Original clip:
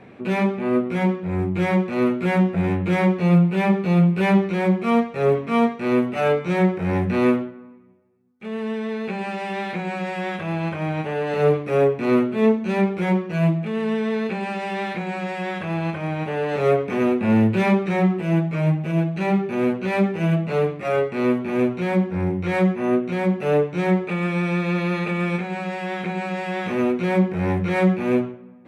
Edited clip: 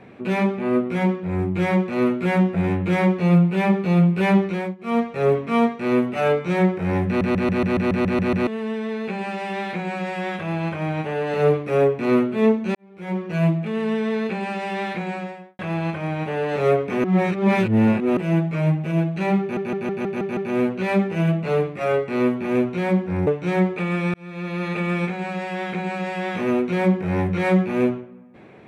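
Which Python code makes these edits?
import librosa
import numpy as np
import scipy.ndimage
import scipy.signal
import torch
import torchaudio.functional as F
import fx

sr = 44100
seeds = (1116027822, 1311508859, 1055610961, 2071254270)

y = fx.studio_fade_out(x, sr, start_s=15.06, length_s=0.53)
y = fx.edit(y, sr, fx.fade_down_up(start_s=4.4, length_s=0.73, db=-20.5, fade_s=0.35, curve='qsin'),
    fx.stutter_over(start_s=7.07, slice_s=0.14, count=10),
    fx.fade_in_span(start_s=12.75, length_s=0.54, curve='qua'),
    fx.reverse_span(start_s=17.04, length_s=1.13),
    fx.stutter(start_s=19.41, slice_s=0.16, count=7),
    fx.cut(start_s=22.31, length_s=1.27),
    fx.fade_in_span(start_s=24.45, length_s=0.67), tone=tone)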